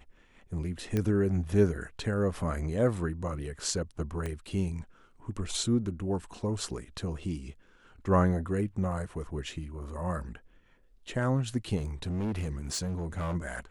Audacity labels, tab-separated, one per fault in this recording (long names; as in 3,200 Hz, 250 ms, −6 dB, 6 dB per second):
0.970000	0.970000	click −17 dBFS
4.260000	4.260000	click −22 dBFS
8.920000	8.920000	drop-out 2.1 ms
11.760000	13.360000	clipping −28.5 dBFS